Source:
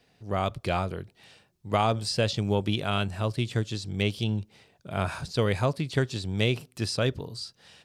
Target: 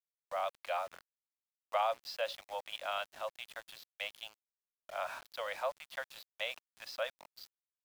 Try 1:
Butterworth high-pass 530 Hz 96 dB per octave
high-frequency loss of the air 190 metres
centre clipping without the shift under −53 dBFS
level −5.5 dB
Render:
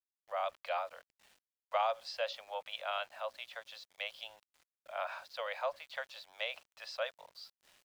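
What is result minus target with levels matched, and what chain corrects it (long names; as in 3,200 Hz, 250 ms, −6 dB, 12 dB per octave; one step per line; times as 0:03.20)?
centre clipping without the shift: distortion −10 dB
Butterworth high-pass 530 Hz 96 dB per octave
high-frequency loss of the air 190 metres
centre clipping without the shift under −42.5 dBFS
level −5.5 dB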